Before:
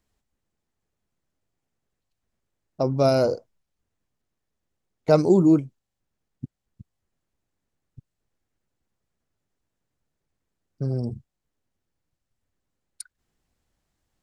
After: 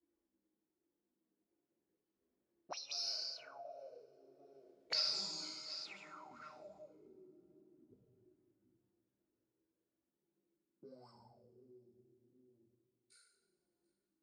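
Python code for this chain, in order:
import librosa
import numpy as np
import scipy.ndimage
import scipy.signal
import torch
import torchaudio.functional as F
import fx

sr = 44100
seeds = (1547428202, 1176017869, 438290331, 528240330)

p1 = fx.spec_trails(x, sr, decay_s=0.38)
p2 = fx.doppler_pass(p1, sr, speed_mps=12, closest_m=5.0, pass_at_s=4.93)
p3 = fx.peak_eq(p2, sr, hz=330.0, db=-10.5, octaves=2.2)
p4 = fx.rider(p3, sr, range_db=10, speed_s=0.5)
p5 = p3 + (p4 * librosa.db_to_amplitude(-2.5))
p6 = fx.chorus_voices(p5, sr, voices=4, hz=0.3, base_ms=17, depth_ms=2.9, mix_pct=60)
p7 = 10.0 ** (-16.0 / 20.0) * np.tanh(p6 / 10.0 ** (-16.0 / 20.0))
p8 = p7 + fx.echo_feedback(p7, sr, ms=737, feedback_pct=21, wet_db=-23.0, dry=0)
p9 = fx.rev_double_slope(p8, sr, seeds[0], early_s=0.85, late_s=2.8, knee_db=-18, drr_db=-2.5)
p10 = fx.auto_wah(p9, sr, base_hz=330.0, top_hz=4700.0, q=11.0, full_db=-37.0, direction='up')
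p11 = fx.band_squash(p10, sr, depth_pct=70)
y = p11 * librosa.db_to_amplitude(15.0)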